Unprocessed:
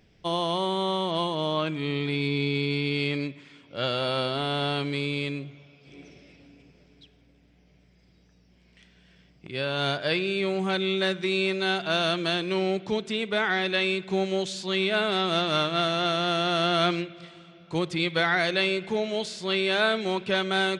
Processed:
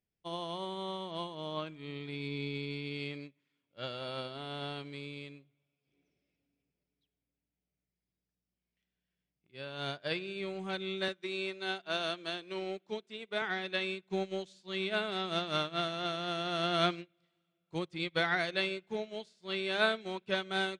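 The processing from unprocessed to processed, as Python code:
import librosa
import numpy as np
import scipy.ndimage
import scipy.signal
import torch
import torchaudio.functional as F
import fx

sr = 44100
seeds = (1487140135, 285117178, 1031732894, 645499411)

y = fx.highpass(x, sr, hz=230.0, slope=12, at=(11.08, 13.42))
y = fx.upward_expand(y, sr, threshold_db=-39.0, expansion=2.5)
y = y * librosa.db_to_amplitude(-3.5)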